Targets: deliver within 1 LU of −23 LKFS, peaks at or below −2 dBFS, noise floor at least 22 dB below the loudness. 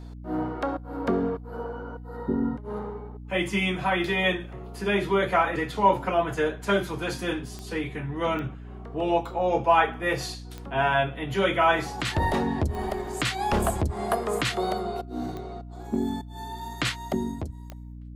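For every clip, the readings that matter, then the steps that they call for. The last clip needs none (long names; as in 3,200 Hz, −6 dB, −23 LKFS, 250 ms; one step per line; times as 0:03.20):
number of clicks 7; mains hum 60 Hz; hum harmonics up to 300 Hz; level of the hum −38 dBFS; integrated loudness −27.0 LKFS; sample peak −6.5 dBFS; target loudness −23.0 LKFS
→ click removal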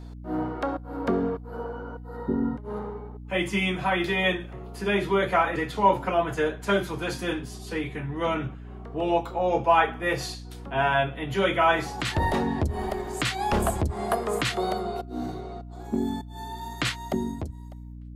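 number of clicks 0; mains hum 60 Hz; hum harmonics up to 300 Hz; level of the hum −38 dBFS
→ mains-hum notches 60/120/180/240/300 Hz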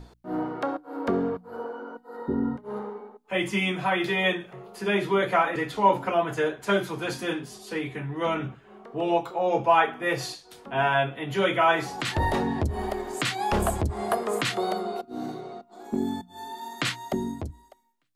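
mains hum none found; integrated loudness −27.0 LKFS; sample peak −6.5 dBFS; target loudness −23.0 LKFS
→ level +4 dB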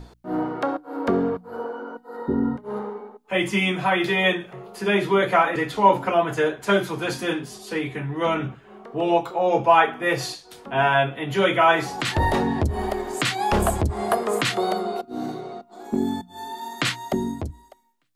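integrated loudness −23.0 LKFS; sample peak −2.5 dBFS; background noise floor −52 dBFS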